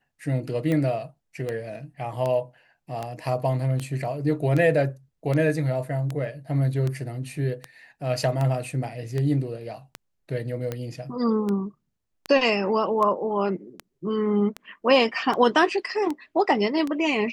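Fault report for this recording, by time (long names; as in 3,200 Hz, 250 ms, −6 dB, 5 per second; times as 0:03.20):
scratch tick 78 rpm −16 dBFS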